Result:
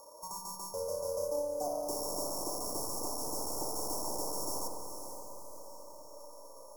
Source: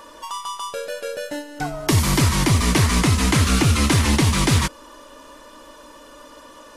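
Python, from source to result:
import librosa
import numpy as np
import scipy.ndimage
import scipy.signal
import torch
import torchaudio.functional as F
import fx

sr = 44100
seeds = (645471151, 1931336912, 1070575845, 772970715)

p1 = np.r_[np.sort(x[:len(x) // 8 * 8].reshape(-1, 8), axis=1).ravel(), x[len(x) // 8 * 8:]]
p2 = fx.cheby_harmonics(p1, sr, harmonics=(3, 5, 8), levels_db=(-18, -19, -17), full_scale_db=-7.5)
p3 = scipy.signal.sosfilt(scipy.signal.butter(4, 470.0, 'highpass', fs=sr, output='sos'), p2)
p4 = fx.peak_eq(p3, sr, hz=1700.0, db=6.0, octaves=0.57)
p5 = fx.tube_stage(p4, sr, drive_db=19.0, bias=0.55)
p6 = 10.0 ** (-21.5 / 20.0) * (np.abs((p5 / 10.0 ** (-21.5 / 20.0) + 3.0) % 4.0 - 2.0) - 1.0)
p7 = scipy.signal.sosfilt(scipy.signal.cheby2(4, 50, [1600.0, 3600.0], 'bandstop', fs=sr, output='sos'), p6)
p8 = p7 + fx.echo_diffused(p7, sr, ms=523, feedback_pct=49, wet_db=-9, dry=0)
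p9 = fx.rev_spring(p8, sr, rt60_s=1.5, pass_ms=(58,), chirp_ms=50, drr_db=3.0)
y = F.gain(torch.from_numpy(p9), -6.0).numpy()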